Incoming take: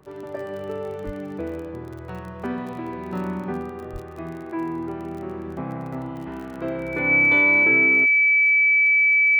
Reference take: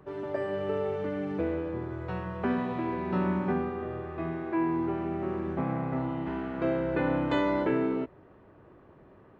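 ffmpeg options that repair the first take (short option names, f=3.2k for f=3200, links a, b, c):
-filter_complex "[0:a]adeclick=t=4,bandreject=f=2.3k:w=30,asplit=3[a][b][c];[a]afade=t=out:st=1.05:d=0.02[d];[b]highpass=f=140:w=0.5412,highpass=f=140:w=1.3066,afade=t=in:st=1.05:d=0.02,afade=t=out:st=1.17:d=0.02[e];[c]afade=t=in:st=1.17:d=0.02[f];[d][e][f]amix=inputs=3:normalize=0,asplit=3[g][h][i];[g]afade=t=out:st=3.92:d=0.02[j];[h]highpass=f=140:w=0.5412,highpass=f=140:w=1.3066,afade=t=in:st=3.92:d=0.02,afade=t=out:st=4.04:d=0.02[k];[i]afade=t=in:st=4.04:d=0.02[l];[j][k][l]amix=inputs=3:normalize=0"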